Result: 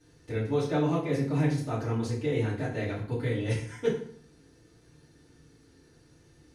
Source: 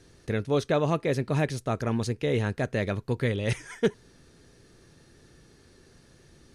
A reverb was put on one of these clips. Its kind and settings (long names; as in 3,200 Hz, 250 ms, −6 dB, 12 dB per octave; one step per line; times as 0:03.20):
feedback delay network reverb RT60 0.58 s, low-frequency decay 1.25×, high-frequency decay 0.8×, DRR −10 dB
level −14.5 dB